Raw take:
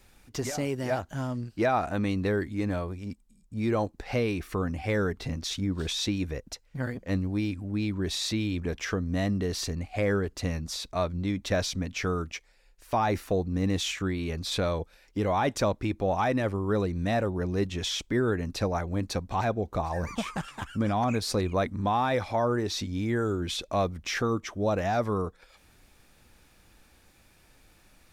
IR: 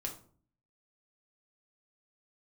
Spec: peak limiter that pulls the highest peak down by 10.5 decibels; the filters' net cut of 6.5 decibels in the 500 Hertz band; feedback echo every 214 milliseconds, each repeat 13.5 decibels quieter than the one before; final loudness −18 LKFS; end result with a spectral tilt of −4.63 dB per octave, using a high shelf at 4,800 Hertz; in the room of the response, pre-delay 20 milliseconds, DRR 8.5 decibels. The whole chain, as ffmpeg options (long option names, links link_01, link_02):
-filter_complex "[0:a]equalizer=frequency=500:width_type=o:gain=-8.5,highshelf=frequency=4800:gain=5.5,alimiter=level_in=2dB:limit=-24dB:level=0:latency=1,volume=-2dB,aecho=1:1:214|428:0.211|0.0444,asplit=2[link_01][link_02];[1:a]atrim=start_sample=2205,adelay=20[link_03];[link_02][link_03]afir=irnorm=-1:irlink=0,volume=-8.5dB[link_04];[link_01][link_04]amix=inputs=2:normalize=0,volume=16.5dB"